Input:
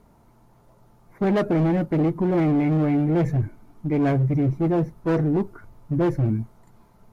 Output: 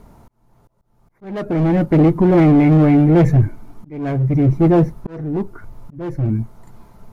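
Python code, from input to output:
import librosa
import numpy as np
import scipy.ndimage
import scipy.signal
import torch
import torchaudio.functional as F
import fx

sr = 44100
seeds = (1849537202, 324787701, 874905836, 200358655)

y = fx.low_shelf(x, sr, hz=65.0, db=6.5)
y = fx.auto_swell(y, sr, attack_ms=763.0)
y = y * 10.0 ** (8.5 / 20.0)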